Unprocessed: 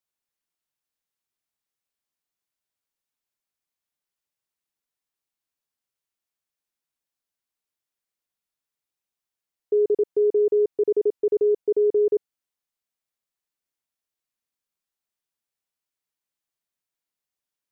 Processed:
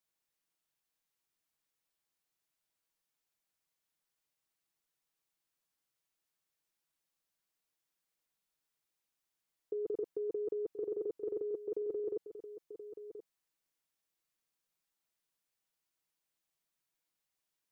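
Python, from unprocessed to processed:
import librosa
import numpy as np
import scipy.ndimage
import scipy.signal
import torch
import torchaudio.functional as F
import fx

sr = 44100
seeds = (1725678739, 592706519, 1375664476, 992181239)

y = x + 0.35 * np.pad(x, (int(6.2 * sr / 1000.0), 0))[:len(x)]
y = fx.over_compress(y, sr, threshold_db=-29.0, ratio=-1.0)
y = y + 10.0 ** (-11.5 / 20.0) * np.pad(y, (int(1028 * sr / 1000.0), 0))[:len(y)]
y = y * 10.0 ** (-7.0 / 20.0)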